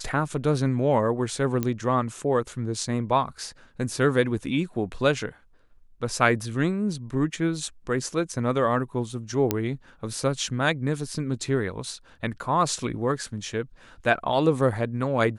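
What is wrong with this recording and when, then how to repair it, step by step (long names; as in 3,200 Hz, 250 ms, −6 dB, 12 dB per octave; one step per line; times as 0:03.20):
0:01.63: click −13 dBFS
0:09.51: click −7 dBFS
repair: click removal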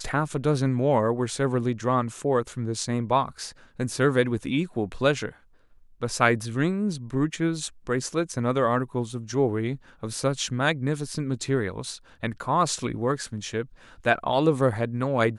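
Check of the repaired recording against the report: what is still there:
0:01.63: click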